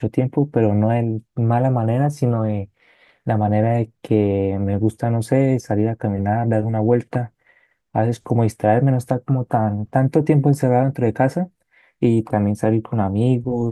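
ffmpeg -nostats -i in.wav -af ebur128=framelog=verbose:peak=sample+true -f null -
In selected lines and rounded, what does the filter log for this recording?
Integrated loudness:
  I:         -19.4 LUFS
  Threshold: -29.8 LUFS
Loudness range:
  LRA:         2.3 LU
  Threshold: -39.8 LUFS
  LRA low:   -20.8 LUFS
  LRA high:  -18.5 LUFS
Sample peak:
  Peak:       -3.0 dBFS
True peak:
  Peak:       -3.0 dBFS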